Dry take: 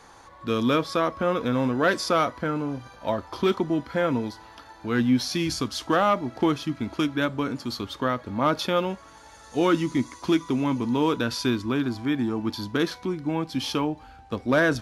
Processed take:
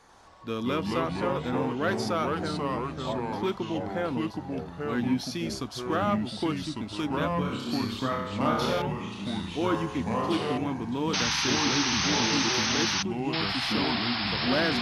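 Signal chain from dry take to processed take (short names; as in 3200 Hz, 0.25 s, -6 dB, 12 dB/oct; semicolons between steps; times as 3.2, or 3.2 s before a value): 7.33–8.82 flutter echo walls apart 5.1 m, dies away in 0.9 s; 11.13–13.03 painted sound noise 760–6400 Hz -21 dBFS; echoes that change speed 89 ms, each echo -3 st, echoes 3; gain -7 dB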